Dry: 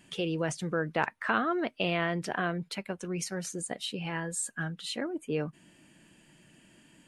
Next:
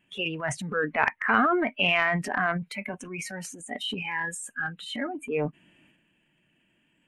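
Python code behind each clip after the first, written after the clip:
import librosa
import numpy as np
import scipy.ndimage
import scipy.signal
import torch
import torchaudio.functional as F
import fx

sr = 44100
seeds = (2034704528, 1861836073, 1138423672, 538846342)

y = fx.noise_reduce_blind(x, sr, reduce_db=17)
y = fx.high_shelf_res(y, sr, hz=3600.0, db=-9.0, q=3.0)
y = fx.transient(y, sr, attack_db=-3, sustain_db=9)
y = y * 10.0 ** (5.5 / 20.0)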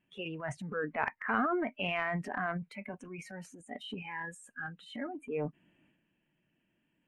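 y = fx.high_shelf(x, sr, hz=2400.0, db=-11.0)
y = y * 10.0 ** (-6.5 / 20.0)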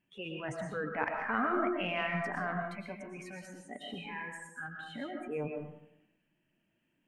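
y = fx.rev_freeverb(x, sr, rt60_s=0.72, hf_ratio=0.6, predelay_ms=80, drr_db=2.0)
y = y * 10.0 ** (-2.0 / 20.0)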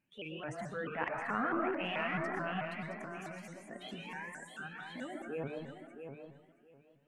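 y = fx.echo_feedback(x, sr, ms=668, feedback_pct=18, wet_db=-8.0)
y = fx.vibrato_shape(y, sr, shape='saw_up', rate_hz=4.6, depth_cents=160.0)
y = y * 10.0 ** (-3.0 / 20.0)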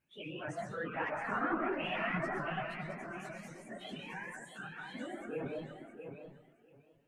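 y = fx.phase_scramble(x, sr, seeds[0], window_ms=50)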